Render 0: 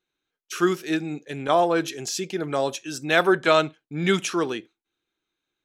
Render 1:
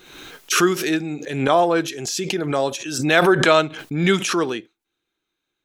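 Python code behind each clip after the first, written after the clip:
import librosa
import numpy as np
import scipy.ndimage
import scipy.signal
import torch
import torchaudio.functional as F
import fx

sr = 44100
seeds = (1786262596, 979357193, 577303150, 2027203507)

y = fx.pre_swell(x, sr, db_per_s=59.0)
y = y * 10.0 ** (3.0 / 20.0)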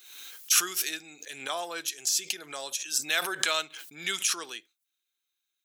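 y = np.diff(x, prepend=0.0)
y = y * 10.0 ** (1.5 / 20.0)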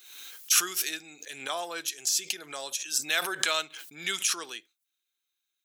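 y = x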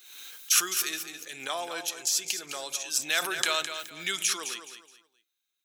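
y = fx.echo_feedback(x, sr, ms=211, feedback_pct=29, wet_db=-9.5)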